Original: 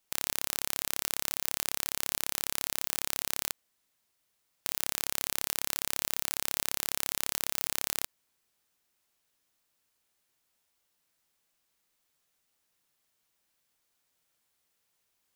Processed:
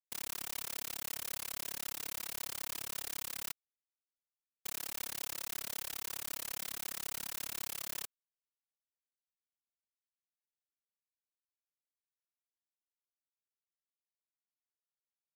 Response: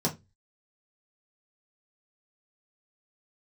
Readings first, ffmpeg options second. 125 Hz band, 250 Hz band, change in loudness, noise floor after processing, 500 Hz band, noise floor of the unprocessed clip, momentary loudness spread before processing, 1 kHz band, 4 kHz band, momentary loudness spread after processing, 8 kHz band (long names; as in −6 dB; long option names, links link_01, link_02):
−8.0 dB, −8.0 dB, −8.0 dB, below −85 dBFS, −8.0 dB, −77 dBFS, 2 LU, −8.0 dB, −8.0 dB, 2 LU, −8.0 dB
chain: -af "asoftclip=type=tanh:threshold=-19dB,afftfilt=real='hypot(re,im)*cos(2*PI*random(0))':imag='hypot(re,im)*sin(2*PI*random(1))':win_size=512:overlap=0.75,aeval=exprs='val(0)*gte(abs(val(0)),0.00112)':channel_layout=same,volume=14dB"